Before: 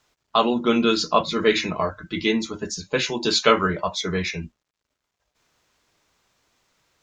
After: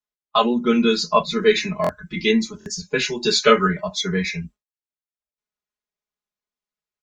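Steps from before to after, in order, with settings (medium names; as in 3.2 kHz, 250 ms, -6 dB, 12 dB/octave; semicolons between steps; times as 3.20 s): gate with hold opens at -32 dBFS; spectral noise reduction 10 dB; comb 4.8 ms, depth 97%; in parallel at +2.5 dB: gain riding 2 s; on the sum: buffer glitch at 1.82/2.59/5.31 s, samples 1024, times 2; trim -9 dB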